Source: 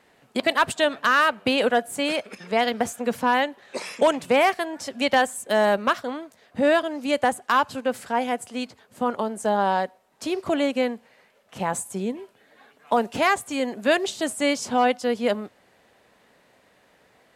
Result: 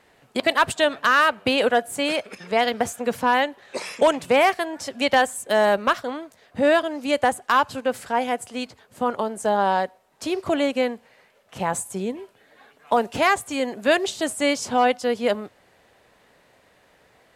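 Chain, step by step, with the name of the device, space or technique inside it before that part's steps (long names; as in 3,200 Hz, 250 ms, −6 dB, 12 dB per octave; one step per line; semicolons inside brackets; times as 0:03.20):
low shelf boost with a cut just above (low-shelf EQ 99 Hz +6 dB; parametric band 220 Hz −4 dB 0.7 octaves)
level +1.5 dB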